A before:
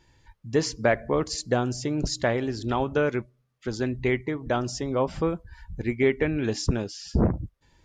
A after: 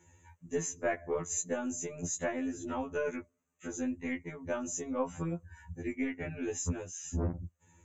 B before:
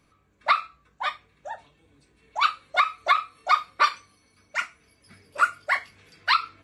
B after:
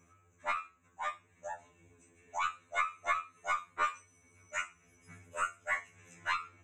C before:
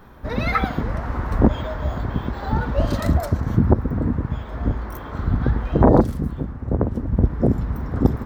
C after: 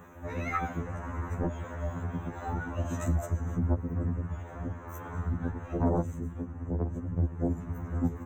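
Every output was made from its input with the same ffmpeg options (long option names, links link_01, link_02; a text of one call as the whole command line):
ffmpeg -i in.wav -af "asuperstop=centerf=4500:order=20:qfactor=7,equalizer=frequency=110:width_type=o:width=1.8:gain=2,acompressor=threshold=-42dB:ratio=1.5,highpass=frequency=51:width=0.5412,highpass=frequency=51:width=1.3066,aeval=exprs='0.251*(cos(1*acos(clip(val(0)/0.251,-1,1)))-cos(1*PI/2))+0.0316*(cos(2*acos(clip(val(0)/0.251,-1,1)))-cos(2*PI/2))':channel_layout=same,superequalizer=13b=0.355:14b=0.282:15b=3.16:16b=0.501,afftfilt=real='re*2*eq(mod(b,4),0)':imag='im*2*eq(mod(b,4),0)':win_size=2048:overlap=0.75" out.wav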